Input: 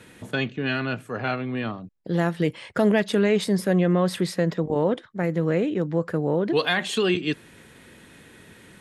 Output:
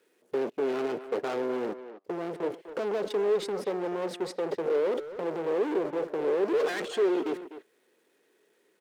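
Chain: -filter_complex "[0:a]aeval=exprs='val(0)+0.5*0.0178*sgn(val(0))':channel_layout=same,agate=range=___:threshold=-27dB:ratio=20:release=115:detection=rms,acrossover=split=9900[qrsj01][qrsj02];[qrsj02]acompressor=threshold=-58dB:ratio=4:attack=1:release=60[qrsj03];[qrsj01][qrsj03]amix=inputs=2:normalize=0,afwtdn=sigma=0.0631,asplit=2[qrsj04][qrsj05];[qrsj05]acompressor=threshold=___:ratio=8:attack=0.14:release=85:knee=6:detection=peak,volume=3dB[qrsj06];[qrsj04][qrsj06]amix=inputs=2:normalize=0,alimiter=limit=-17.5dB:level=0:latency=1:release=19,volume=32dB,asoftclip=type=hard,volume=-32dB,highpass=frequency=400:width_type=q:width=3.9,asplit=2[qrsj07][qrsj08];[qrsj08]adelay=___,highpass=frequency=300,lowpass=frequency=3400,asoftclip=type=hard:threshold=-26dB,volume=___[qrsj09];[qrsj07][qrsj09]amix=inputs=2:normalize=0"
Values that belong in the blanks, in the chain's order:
-24dB, -29dB, 250, -11dB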